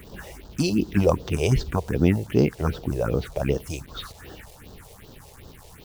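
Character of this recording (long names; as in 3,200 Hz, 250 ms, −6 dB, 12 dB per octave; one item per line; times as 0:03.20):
a quantiser's noise floor 8 bits, dither none
phaser sweep stages 4, 2.6 Hz, lowest notch 230–2,200 Hz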